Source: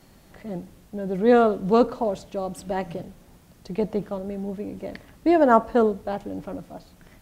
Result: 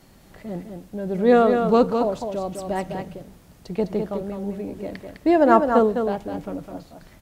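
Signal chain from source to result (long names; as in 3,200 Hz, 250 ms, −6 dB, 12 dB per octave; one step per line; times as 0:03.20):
single-tap delay 206 ms −6 dB
level +1 dB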